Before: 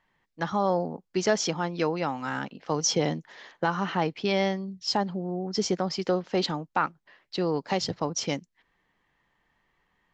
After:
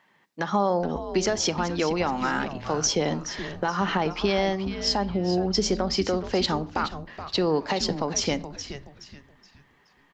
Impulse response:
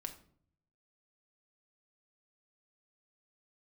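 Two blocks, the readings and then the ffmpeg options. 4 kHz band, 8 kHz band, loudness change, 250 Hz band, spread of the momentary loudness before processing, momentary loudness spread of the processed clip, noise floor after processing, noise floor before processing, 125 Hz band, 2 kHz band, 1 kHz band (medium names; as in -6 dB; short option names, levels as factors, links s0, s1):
+4.0 dB, +3.0 dB, +2.5 dB, +3.0 dB, 7 LU, 7 LU, -62 dBFS, -76 dBFS, +2.0 dB, +2.5 dB, +2.0 dB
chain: -filter_complex "[0:a]highpass=170,acompressor=threshold=0.0282:ratio=2,alimiter=limit=0.0708:level=0:latency=1:release=157,asplit=5[s0][s1][s2][s3][s4];[s1]adelay=423,afreqshift=-140,volume=0.282[s5];[s2]adelay=846,afreqshift=-280,volume=0.0933[s6];[s3]adelay=1269,afreqshift=-420,volume=0.0305[s7];[s4]adelay=1692,afreqshift=-560,volume=0.0101[s8];[s0][s5][s6][s7][s8]amix=inputs=5:normalize=0,asplit=2[s9][s10];[1:a]atrim=start_sample=2205[s11];[s10][s11]afir=irnorm=-1:irlink=0,volume=0.562[s12];[s9][s12]amix=inputs=2:normalize=0,volume=2.11"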